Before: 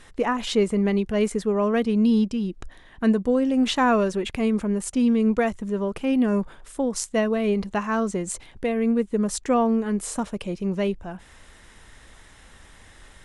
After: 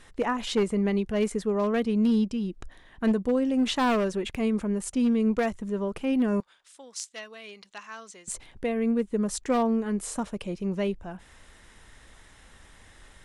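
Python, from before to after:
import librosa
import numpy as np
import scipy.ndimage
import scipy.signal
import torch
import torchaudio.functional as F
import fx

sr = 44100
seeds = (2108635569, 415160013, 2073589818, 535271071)

y = np.minimum(x, 2.0 * 10.0 ** (-15.5 / 20.0) - x)
y = fx.bandpass_q(y, sr, hz=4400.0, q=0.95, at=(6.4, 8.28))
y = y * 10.0 ** (-3.5 / 20.0)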